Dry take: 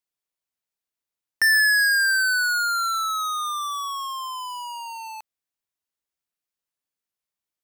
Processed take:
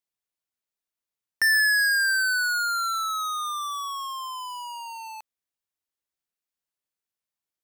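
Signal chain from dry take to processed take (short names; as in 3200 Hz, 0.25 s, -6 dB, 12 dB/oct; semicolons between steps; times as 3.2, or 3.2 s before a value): 1.43–3.14 HPF 490 Hz; gain -2.5 dB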